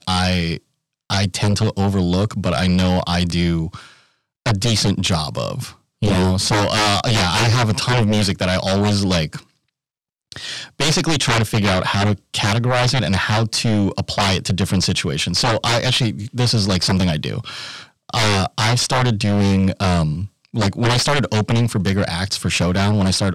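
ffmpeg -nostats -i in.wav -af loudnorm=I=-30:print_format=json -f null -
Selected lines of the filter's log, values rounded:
"input_i" : "-18.1",
"input_tp" : "-11.0",
"input_lra" : "2.3",
"input_thresh" : "-28.4",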